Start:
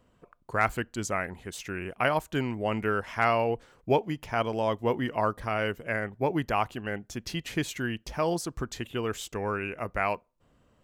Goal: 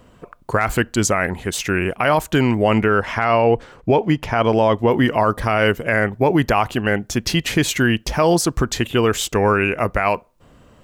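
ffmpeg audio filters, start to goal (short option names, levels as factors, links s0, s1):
-filter_complex "[0:a]asettb=1/sr,asplit=3[s0][s1][s2];[s0]atrim=end=2.784[s3];[s1]atrim=start=2.78:end=4.91,asetpts=PTS-STARTPTS,afade=t=in:d=0.004:c=qsin,afade=t=out:st=2.126:d=0.004:c=qsin,lowpass=f=3800:p=1[s4];[s2]atrim=start=4.906[s5];[s3][s4]acrossfade=d=0.004:c1=hsin:c2=qsin[s6];[s6][s5]acrossfade=d=0.004:c1=qsin:c2=hsin,alimiter=level_in=10.6:limit=0.891:release=50:level=0:latency=1,volume=0.562"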